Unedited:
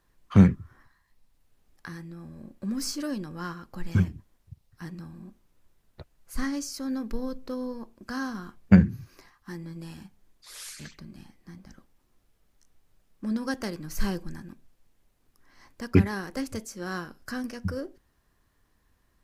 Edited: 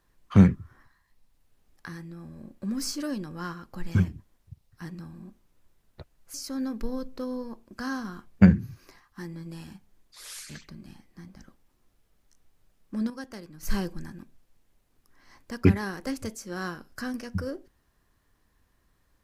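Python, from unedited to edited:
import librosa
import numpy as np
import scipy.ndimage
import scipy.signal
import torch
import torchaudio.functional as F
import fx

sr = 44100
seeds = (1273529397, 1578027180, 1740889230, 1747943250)

y = fx.edit(x, sr, fx.cut(start_s=6.34, length_s=0.3),
    fx.clip_gain(start_s=13.4, length_s=0.53, db=-9.0), tone=tone)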